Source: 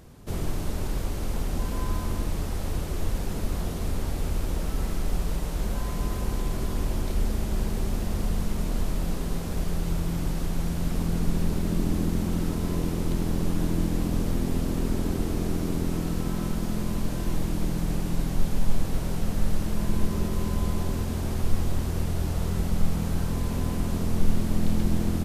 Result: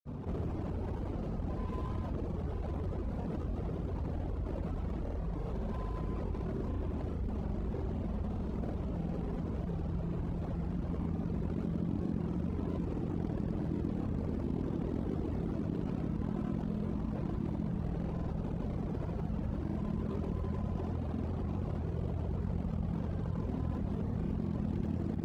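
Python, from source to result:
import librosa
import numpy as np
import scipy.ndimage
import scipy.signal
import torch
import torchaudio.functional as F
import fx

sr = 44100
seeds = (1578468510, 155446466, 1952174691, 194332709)

p1 = scipy.signal.medfilt(x, 25)
p2 = fx.lowpass(p1, sr, hz=2700.0, slope=6)
p3 = fx.dereverb_blind(p2, sr, rt60_s=1.7)
p4 = scipy.signal.sosfilt(scipy.signal.butter(4, 50.0, 'highpass', fs=sr, output='sos'), p3)
p5 = fx.granulator(p4, sr, seeds[0], grain_ms=100.0, per_s=20.0, spray_ms=100.0, spread_st=0)
p6 = p5 + fx.echo_single(p5, sr, ms=939, db=-12.0, dry=0)
p7 = fx.env_flatten(p6, sr, amount_pct=70)
y = p7 * 10.0 ** (-6.0 / 20.0)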